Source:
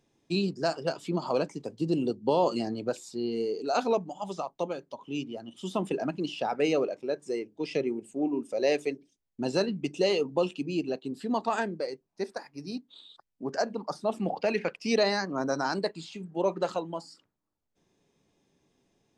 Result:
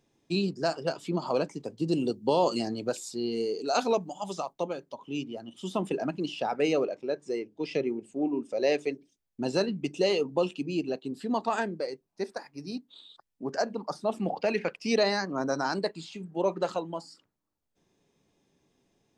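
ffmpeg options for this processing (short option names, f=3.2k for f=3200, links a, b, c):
-filter_complex "[0:a]asettb=1/sr,asplit=3[a][b][c];[a]atrim=end=1.884[d];[b]atrim=start=1.88:end=4.53,asetpts=PTS-STARTPTS,afade=t=in:d=0.004:c=qsin,afade=t=out:st=2.646:d=0.004:c=qsin,highshelf=f=3.8k:g=8[e];[c]atrim=start=4.526[f];[d][e]acrossfade=d=0.004:c1=hsin:c2=qsin[g];[g][f]acrossfade=d=0.004:c1=qsin:c2=hsin,asettb=1/sr,asplit=3[h][i][j];[h]atrim=end=6.854[k];[i]atrim=start=6.85:end=8.93,asetpts=PTS-STARTPTS,afade=t=in:d=0.004:c=qsin,afade=t=out:st=2.076:d=0.004:c=qsin,lowpass=6.8k[l];[j]atrim=start=8.926[m];[k][l]acrossfade=d=0.004:c1=hsin:c2=qsin[n];[n][m]acrossfade=d=0.004:c1=qsin:c2=hsin"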